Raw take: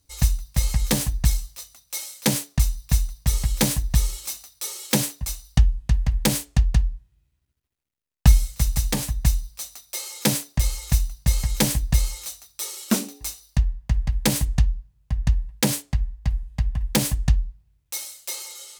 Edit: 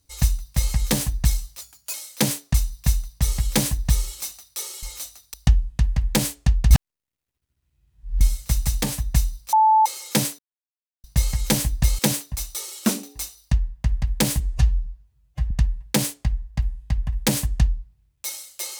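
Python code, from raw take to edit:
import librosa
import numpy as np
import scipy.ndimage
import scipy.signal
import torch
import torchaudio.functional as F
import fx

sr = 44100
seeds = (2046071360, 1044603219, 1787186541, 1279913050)

y = fx.edit(x, sr, fx.speed_span(start_s=1.61, length_s=0.38, speed=1.16),
    fx.swap(start_s=4.88, length_s=0.56, other_s=12.09, other_length_s=0.51),
    fx.reverse_span(start_s=6.81, length_s=1.5),
    fx.bleep(start_s=9.63, length_s=0.33, hz=873.0, db=-12.0),
    fx.silence(start_s=10.49, length_s=0.65),
    fx.stretch_span(start_s=14.45, length_s=0.74, factor=1.5), tone=tone)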